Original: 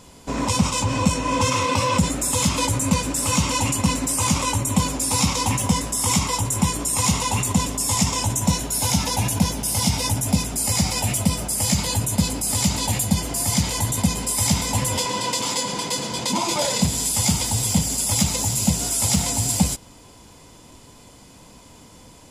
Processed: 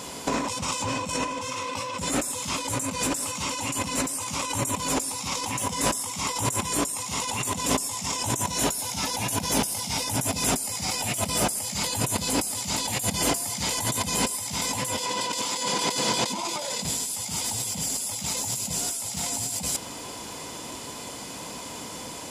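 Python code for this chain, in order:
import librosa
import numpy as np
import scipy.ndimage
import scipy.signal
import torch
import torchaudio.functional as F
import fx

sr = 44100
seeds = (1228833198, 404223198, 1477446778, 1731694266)

y = fx.highpass(x, sr, hz=340.0, slope=6)
y = fx.over_compress(y, sr, threshold_db=-33.0, ratio=-1.0)
y = F.gain(torch.from_numpy(y), 4.0).numpy()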